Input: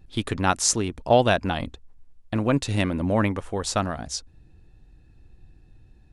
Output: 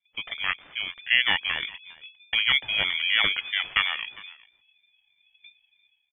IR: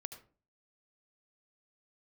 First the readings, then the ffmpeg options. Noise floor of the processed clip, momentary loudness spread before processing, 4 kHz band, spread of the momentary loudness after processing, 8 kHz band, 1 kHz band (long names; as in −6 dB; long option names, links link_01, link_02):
−71 dBFS, 11 LU, +9.5 dB, 14 LU, below −40 dB, −10.0 dB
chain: -filter_complex "[0:a]agate=range=-22dB:threshold=-43dB:ratio=16:detection=peak,dynaudnorm=framelen=160:gausssize=5:maxgain=14dB,asplit=2[link_01][link_02];[link_02]aecho=0:1:406:0.0794[link_03];[link_01][link_03]amix=inputs=2:normalize=0,lowpass=frequency=2600:width_type=q:width=0.5098,lowpass=frequency=2600:width_type=q:width=0.6013,lowpass=frequency=2600:width_type=q:width=0.9,lowpass=frequency=2600:width_type=q:width=2.563,afreqshift=-3000,aeval=exprs='val(0)*sin(2*PI*480*n/s+480*0.2/3.1*sin(2*PI*3.1*n/s))':channel_layout=same,volume=-5dB"